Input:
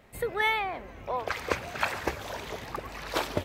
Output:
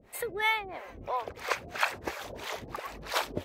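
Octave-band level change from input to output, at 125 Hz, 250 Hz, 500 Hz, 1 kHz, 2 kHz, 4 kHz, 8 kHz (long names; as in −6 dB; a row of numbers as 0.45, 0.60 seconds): −6.0, −4.5, −4.0, −1.5, −1.0, 0.0, +1.0 decibels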